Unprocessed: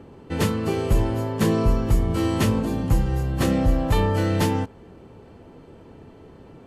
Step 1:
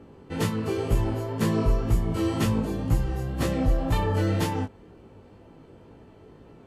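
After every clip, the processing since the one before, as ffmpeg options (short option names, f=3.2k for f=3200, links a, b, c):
-af "flanger=delay=17:depth=4:speed=2,volume=-1dB"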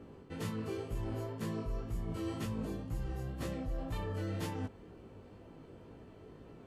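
-af "bandreject=f=860:w=16,areverse,acompressor=threshold=-33dB:ratio=4,areverse,volume=-3.5dB"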